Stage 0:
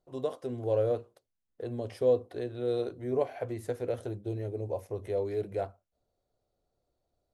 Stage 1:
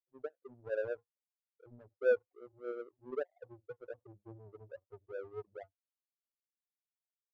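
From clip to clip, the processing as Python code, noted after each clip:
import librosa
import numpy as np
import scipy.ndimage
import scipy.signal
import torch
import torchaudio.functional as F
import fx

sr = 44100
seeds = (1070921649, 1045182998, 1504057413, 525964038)

y = fx.spec_topn(x, sr, count=4)
y = fx.power_curve(y, sr, exponent=2.0)
y = y * librosa.db_to_amplitude(-1.0)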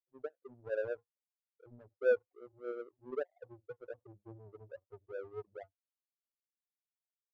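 y = x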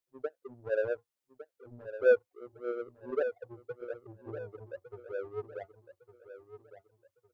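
y = fx.echo_feedback(x, sr, ms=1157, feedback_pct=34, wet_db=-12.0)
y = y * librosa.db_to_amplitude(5.5)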